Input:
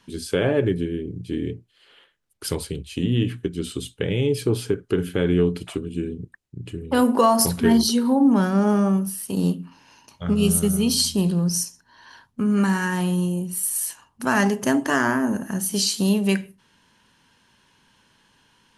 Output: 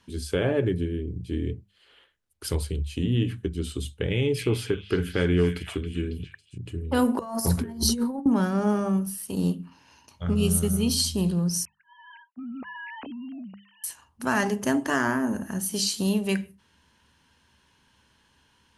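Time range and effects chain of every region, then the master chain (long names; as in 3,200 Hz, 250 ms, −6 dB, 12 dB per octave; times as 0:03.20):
0:04.11–0:06.58: parametric band 1,900 Hz +6.5 dB 1.6 octaves + echo through a band-pass that steps 275 ms, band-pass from 2,400 Hz, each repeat 0.7 octaves, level −7 dB
0:07.19–0:08.26: parametric band 3,100 Hz −8 dB 1 octave + compressor whose output falls as the input rises −23 dBFS, ratio −0.5
0:11.65–0:13.84: three sine waves on the formant tracks + downward compressor 5 to 1, threshold −33 dBFS
whole clip: parametric band 73 Hz +15 dB 0.53 octaves; mains-hum notches 50/100/150/200 Hz; level −4 dB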